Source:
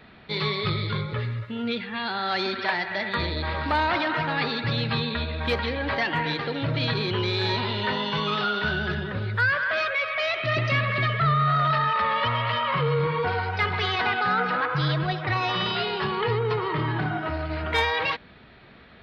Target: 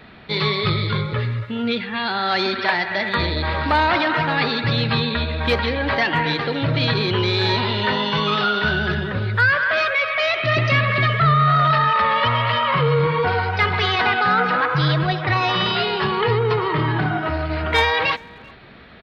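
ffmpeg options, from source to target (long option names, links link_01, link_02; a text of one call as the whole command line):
ffmpeg -i in.wav -filter_complex "[0:a]asplit=2[link_01][link_02];[link_02]adelay=390,highpass=300,lowpass=3400,asoftclip=type=hard:threshold=-20.5dB,volume=-24dB[link_03];[link_01][link_03]amix=inputs=2:normalize=0,volume=6dB" out.wav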